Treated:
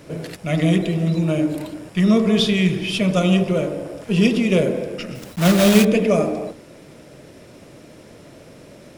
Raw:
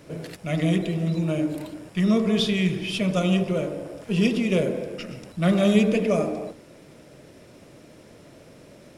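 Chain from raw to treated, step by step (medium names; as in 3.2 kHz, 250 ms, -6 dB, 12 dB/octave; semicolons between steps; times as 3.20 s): 5.15–5.86 s: block-companded coder 3-bit; trim +5 dB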